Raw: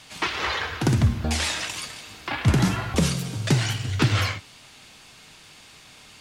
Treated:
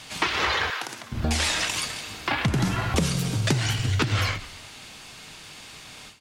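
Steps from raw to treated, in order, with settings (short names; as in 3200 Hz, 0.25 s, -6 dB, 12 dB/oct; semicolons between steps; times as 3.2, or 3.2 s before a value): frequency-shifting echo 0.133 s, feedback 48%, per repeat -63 Hz, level -22 dB; compressor 5:1, threshold -25 dBFS, peak gain reduction 10.5 dB; 0.7–1.12 HPF 710 Hz 12 dB/oct; ending taper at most 140 dB/s; gain +5 dB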